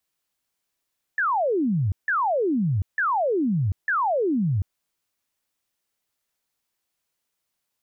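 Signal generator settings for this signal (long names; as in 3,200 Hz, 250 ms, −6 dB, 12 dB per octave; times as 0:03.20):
repeated falling chirps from 1,800 Hz, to 87 Hz, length 0.74 s sine, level −19.5 dB, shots 4, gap 0.16 s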